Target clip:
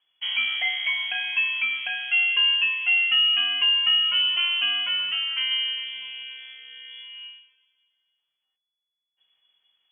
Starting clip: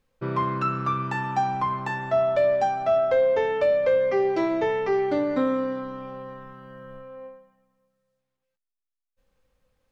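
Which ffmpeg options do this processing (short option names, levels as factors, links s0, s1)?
-filter_complex "[0:a]asettb=1/sr,asplit=3[s0][s1][s2];[s0]atrim=end=4.884[s3];[s1]atrim=start=4.88:end=5.51,asetpts=PTS-STARTPTS,afade=t=in:d=0.004:c=qsin,afade=t=out:st=0.626:d=0.004:c=qsin,highpass=f=430:p=1[s4];[s2]atrim=start=5.506[s5];[s3][s4]acrossfade=d=0.004:c1=hsin:c2=qsin[s6];[s6][s5]acrossfade=d=0.004:c1=qsin:c2=hsin,lowpass=f=2900:t=q:w=0.5098,lowpass=f=2900:t=q:w=0.6013,lowpass=f=2900:t=q:w=0.9,lowpass=f=2900:t=q:w=2.563,afreqshift=-3400"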